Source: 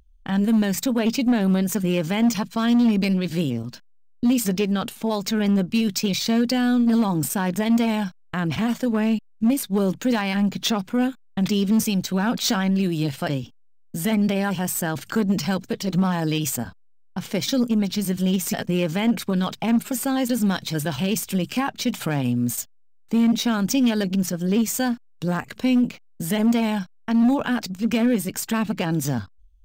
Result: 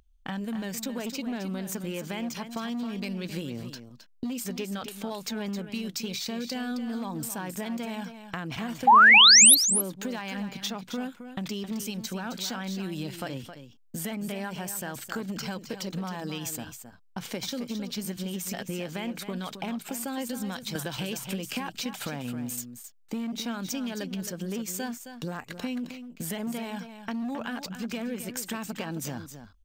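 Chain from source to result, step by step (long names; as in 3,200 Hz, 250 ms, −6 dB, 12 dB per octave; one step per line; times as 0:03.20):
low-shelf EQ 270 Hz −7 dB
downward compressor 6 to 1, threshold −30 dBFS, peak gain reduction 11 dB
0:08.87–0:09.55: sound drawn into the spectrogram rise 760–12,000 Hz −13 dBFS
on a send: single-tap delay 266 ms −10 dB
0:20.75–0:21.80: on the sum: multiband upward and downward compressor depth 100%
level −1 dB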